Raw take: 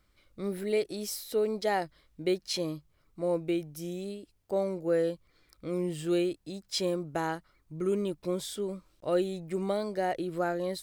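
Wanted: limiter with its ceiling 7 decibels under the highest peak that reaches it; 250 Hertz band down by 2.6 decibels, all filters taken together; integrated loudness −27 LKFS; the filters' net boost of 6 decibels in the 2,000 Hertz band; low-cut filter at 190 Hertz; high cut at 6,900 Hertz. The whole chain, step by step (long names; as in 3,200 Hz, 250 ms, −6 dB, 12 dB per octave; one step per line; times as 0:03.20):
high-pass filter 190 Hz
low-pass filter 6,900 Hz
parametric band 250 Hz −3 dB
parametric band 2,000 Hz +7.5 dB
level +7.5 dB
brickwall limiter −15 dBFS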